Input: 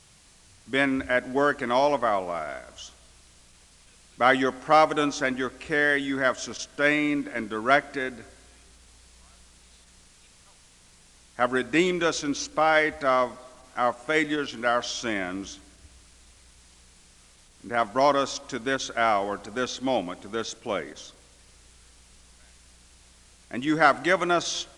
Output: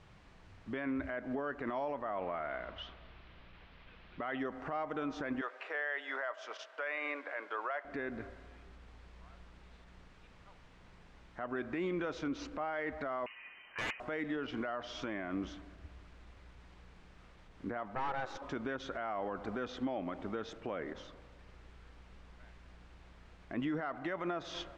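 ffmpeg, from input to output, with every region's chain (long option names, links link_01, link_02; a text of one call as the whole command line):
ffmpeg -i in.wav -filter_complex "[0:a]asettb=1/sr,asplit=3[link_01][link_02][link_03];[link_01]atrim=end=2.174[link_04];[link_02]atrim=start=2.17:end=4.39,asetpts=PTS-STARTPTS,afade=type=in:duration=0.004:curve=qsin,afade=type=out:start_time=2.216:duration=0.004:curve=qsin,lowpass=frequency=3600:width=0.5412,lowpass=frequency=3600:width=1.3066,highshelf=frequency=2400:gain=10.5[link_05];[link_03]atrim=start=4.386[link_06];[link_04][link_05]acrossfade=duration=0.004:curve1=hsin:curve2=qsin[link_07];[link_07][link_06]acrossfade=duration=0.004:curve1=qsin:curve2=hsin,asettb=1/sr,asplit=3[link_08][link_09][link_10];[link_08]atrim=end=5.414[link_11];[link_09]atrim=start=5.41:end=7.85,asetpts=PTS-STARTPTS,afade=type=in:duration=0.004:curve=qsin,afade=type=out:start_time=2.436:duration=0.004:curve=qsin,highpass=frequency=560:width=0.5412,highpass=frequency=560:width=1.3066,highshelf=frequency=9400:gain=-8[link_12];[link_10]atrim=start=7.846[link_13];[link_11][link_12]acrossfade=duration=0.004:curve1=hsin:curve2=qsin[link_14];[link_14][link_13]acrossfade=duration=0.004:curve1=qsin:curve2=hsin,asettb=1/sr,asplit=3[link_15][link_16][link_17];[link_15]atrim=end=13.264[link_18];[link_16]atrim=start=13.26:end=14,asetpts=PTS-STARTPTS,afade=type=in:duration=0.004:curve=qsin,afade=type=out:start_time=0.736:duration=0.004:curve=qsin,lowpass=frequency=2600:width_type=q:width=0.5098,lowpass=frequency=2600:width_type=q:width=0.6013,lowpass=frequency=2600:width_type=q:width=0.9,lowpass=frequency=2600:width_type=q:width=2.563,afreqshift=-3100,aeval=exprs='(mod(11.2*val(0)+1,2)-1)/11.2':channel_layout=same[link_19];[link_17]atrim=start=13.996[link_20];[link_18][link_19]acrossfade=duration=0.004:curve1=hsin:curve2=qsin[link_21];[link_21][link_20]acrossfade=duration=0.004:curve1=qsin:curve2=hsin,asettb=1/sr,asplit=3[link_22][link_23][link_24];[link_22]atrim=end=17.954[link_25];[link_23]atrim=start=17.95:end=18.42,asetpts=PTS-STARTPTS,afade=type=in:duration=0.004:curve=qsin,afade=type=out:start_time=0.466:duration=0.004:curve=qsin,afreqshift=260,aeval=exprs='(tanh(15.8*val(0)+0.7)-tanh(0.7))/15.8':channel_layout=same[link_26];[link_24]atrim=start=18.416[link_27];[link_25][link_26]acrossfade=duration=0.004:curve1=hsin:curve2=qsin[link_28];[link_28][link_27]acrossfade=duration=0.004:curve1=qsin:curve2=hsin,lowpass=1900,acompressor=threshold=-31dB:ratio=4,alimiter=level_in=5dB:limit=-24dB:level=0:latency=1:release=37,volume=-5dB,volume=1dB" out.wav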